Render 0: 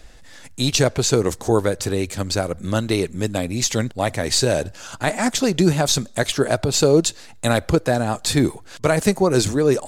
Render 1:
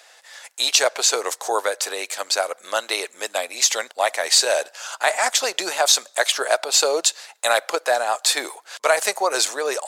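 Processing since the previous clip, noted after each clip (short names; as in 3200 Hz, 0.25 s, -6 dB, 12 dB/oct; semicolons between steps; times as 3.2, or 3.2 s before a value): HPF 610 Hz 24 dB/oct; gain +4 dB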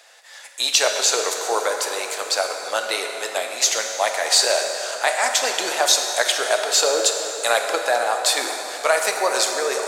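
plate-style reverb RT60 3.8 s, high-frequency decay 0.65×, DRR 3 dB; gain -1 dB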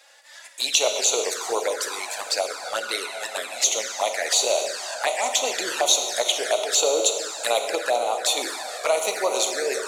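envelope flanger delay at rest 3.8 ms, full sweep at -17 dBFS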